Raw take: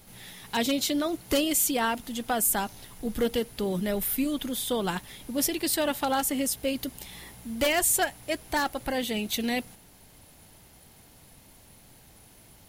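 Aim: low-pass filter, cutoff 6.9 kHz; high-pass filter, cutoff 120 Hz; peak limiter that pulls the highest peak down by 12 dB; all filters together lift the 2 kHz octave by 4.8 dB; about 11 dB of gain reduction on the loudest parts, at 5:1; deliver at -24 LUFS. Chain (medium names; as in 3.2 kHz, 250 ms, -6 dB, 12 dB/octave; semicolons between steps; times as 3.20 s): high-pass 120 Hz; low-pass 6.9 kHz; peaking EQ 2 kHz +6 dB; compression 5:1, threshold -32 dBFS; trim +14 dB; peak limiter -14.5 dBFS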